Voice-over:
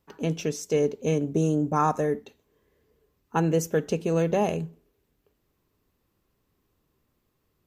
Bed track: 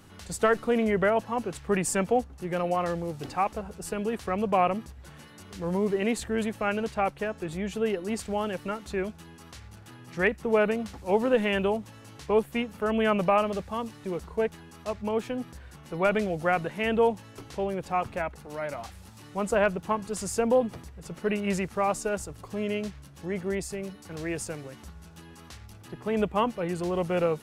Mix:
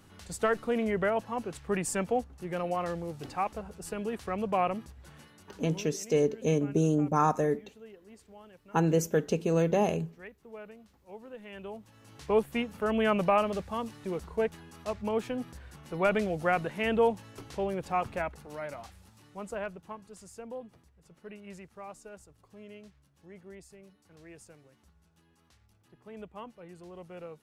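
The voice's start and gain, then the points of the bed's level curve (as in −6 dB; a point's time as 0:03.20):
5.40 s, −2.0 dB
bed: 0:05.21 −4.5 dB
0:06.05 −22.5 dB
0:11.37 −22.5 dB
0:12.29 −2 dB
0:18.23 −2 dB
0:20.34 −18.5 dB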